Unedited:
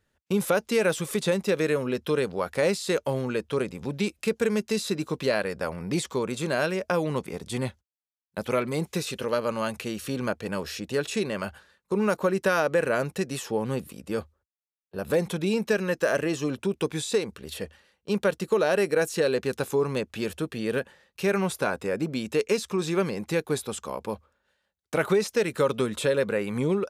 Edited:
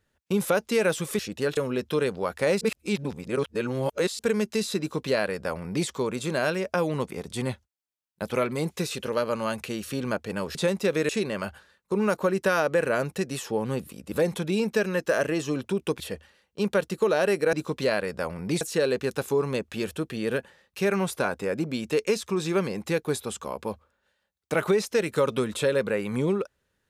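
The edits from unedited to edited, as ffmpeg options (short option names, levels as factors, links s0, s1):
-filter_complex "[0:a]asplit=11[s0][s1][s2][s3][s4][s5][s6][s7][s8][s9][s10];[s0]atrim=end=1.192[s11];[s1]atrim=start=10.708:end=11.092[s12];[s2]atrim=start=1.728:end=2.772[s13];[s3]atrim=start=2.768:end=4.352,asetpts=PTS-STARTPTS,areverse[s14];[s4]atrim=start=4.348:end=10.712[s15];[s5]atrim=start=1.188:end=1.732[s16];[s6]atrim=start=11.088:end=14.122[s17];[s7]atrim=start=15.058:end=16.942[s18];[s8]atrim=start=17.498:end=19.032[s19];[s9]atrim=start=4.948:end=6.032[s20];[s10]atrim=start=19.028[s21];[s11][s12]acrossfade=d=0.004:c1=hsin:c2=hsin[s22];[s22][s13]acrossfade=d=0.004:c1=hsin:c2=hsin[s23];[s23][s14]acrossfade=d=0.004:c1=hsin:c2=hsin[s24];[s24][s15]acrossfade=d=0.004:c1=hsin:c2=hsin[s25];[s25][s16]acrossfade=d=0.004:c1=hsin:c2=hsin[s26];[s26][s17]acrossfade=d=0.004:c1=hsin:c2=hsin[s27];[s27][s18]acrossfade=d=0.004:c1=hsin:c2=hsin[s28];[s28][s19]acrossfade=d=0.004:c1=hsin:c2=hsin[s29];[s29][s20]acrossfade=d=0.004:c1=hsin:c2=hsin[s30];[s30][s21]acrossfade=d=0.004:c1=hsin:c2=hsin"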